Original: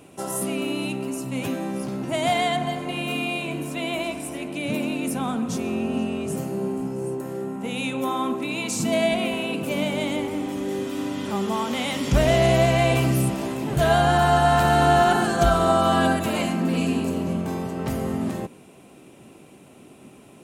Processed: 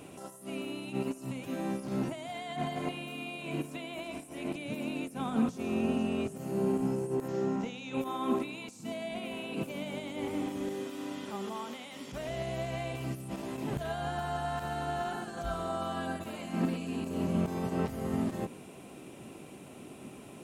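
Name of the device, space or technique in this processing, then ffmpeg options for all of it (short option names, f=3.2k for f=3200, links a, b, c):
de-esser from a sidechain: -filter_complex "[0:a]asplit=2[a][b];[b]highpass=f=4k:w=0.5412,highpass=f=4k:w=1.3066,apad=whole_len=901362[c];[a][c]sidechaincompress=threshold=-51dB:ratio=10:attack=0.58:release=47,asettb=1/sr,asplit=3[d][e][f];[d]atrim=end=7.284[g];[e]atrim=start=7.28:end=7.94,asetpts=PTS-STARTPTS,afade=t=in:d=0.004:c=qsin,afade=t=out:st=0.656:d=0.004:c=qsin,highshelf=f=7.7k:t=q:w=3:g=-9.5[h];[f]atrim=start=7.936[i];[g][h]acrossfade=d=0.004:c1=hsin:c2=qsin[j];[j][i]acrossfade=d=0.004:c1=qsin:c2=hsin,asettb=1/sr,asplit=3[k][l][m];[k]atrim=end=10.744[n];[l]atrim=start=10.74:end=12.29,asetpts=PTS-STARTPTS,afade=t=in:d=0.004:c=qsin,afade=t=out:st=1.546:d=0.004:c=qsin,highpass=f=230:p=1[o];[m]atrim=start=12.286[p];[n][o]acrossfade=d=0.004:c1=hsin:c2=qsin[q];[q][p]acrossfade=d=0.004:c1=qsin:c2=hsin"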